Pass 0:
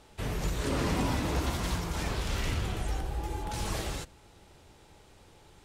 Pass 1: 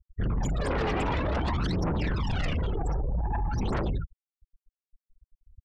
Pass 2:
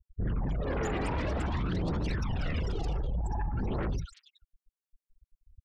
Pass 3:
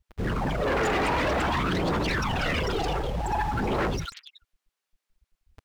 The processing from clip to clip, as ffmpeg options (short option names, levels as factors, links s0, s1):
-af "aphaser=in_gain=1:out_gain=1:delay=2.6:decay=0.57:speed=0.53:type=triangular,afftfilt=real='re*gte(hypot(re,im),0.0355)':imag='im*gte(hypot(re,im),0.0355)':win_size=1024:overlap=0.75,aeval=exprs='0.168*sin(PI/2*3.55*val(0)/0.168)':c=same,volume=0.376"
-filter_complex "[0:a]acrossover=split=970|3500[s0][s1][s2];[s1]adelay=60[s3];[s2]adelay=400[s4];[s0][s3][s4]amix=inputs=3:normalize=0,volume=0.708"
-filter_complex "[0:a]asplit=2[s0][s1];[s1]acrusher=bits=7:mix=0:aa=0.000001,volume=0.562[s2];[s0][s2]amix=inputs=2:normalize=0,asplit=2[s3][s4];[s4]highpass=f=720:p=1,volume=11.2,asoftclip=type=tanh:threshold=0.126[s5];[s3][s5]amix=inputs=2:normalize=0,lowpass=f=3400:p=1,volume=0.501"